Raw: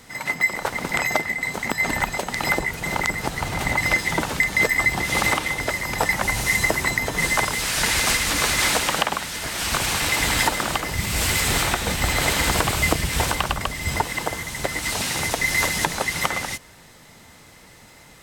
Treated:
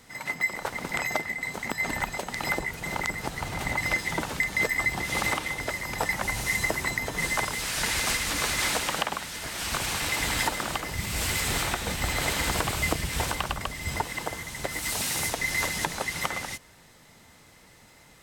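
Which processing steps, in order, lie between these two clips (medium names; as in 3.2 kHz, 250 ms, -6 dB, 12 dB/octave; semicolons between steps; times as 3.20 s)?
14.70–15.29 s: treble shelf 11 kHz -> 6.6 kHz +9.5 dB; trim -6.5 dB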